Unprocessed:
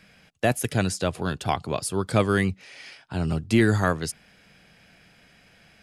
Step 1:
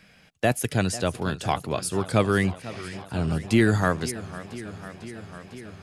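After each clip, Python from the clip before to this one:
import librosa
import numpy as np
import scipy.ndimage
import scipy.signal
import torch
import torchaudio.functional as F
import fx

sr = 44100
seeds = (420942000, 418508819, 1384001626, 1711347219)

y = fx.echo_warbled(x, sr, ms=499, feedback_pct=77, rate_hz=2.8, cents=130, wet_db=-16.0)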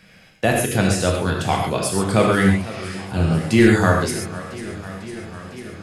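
y = fx.rev_gated(x, sr, seeds[0], gate_ms=160, shape='flat', drr_db=-1.0)
y = F.gain(torch.from_numpy(y), 3.0).numpy()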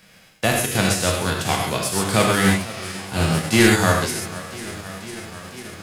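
y = fx.envelope_flatten(x, sr, power=0.6)
y = F.gain(torch.from_numpy(y), -1.5).numpy()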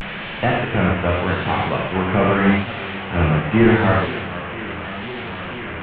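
y = fx.delta_mod(x, sr, bps=16000, step_db=-25.5)
y = fx.vibrato(y, sr, rate_hz=0.82, depth_cents=92.0)
y = fx.hum_notches(y, sr, base_hz=50, count=2)
y = F.gain(torch.from_numpy(y), 3.0).numpy()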